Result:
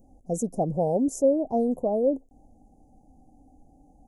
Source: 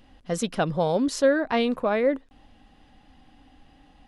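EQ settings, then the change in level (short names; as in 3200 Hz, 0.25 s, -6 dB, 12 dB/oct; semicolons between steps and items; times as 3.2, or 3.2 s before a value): Chebyshev band-stop 760–6500 Hz, order 4; 0.0 dB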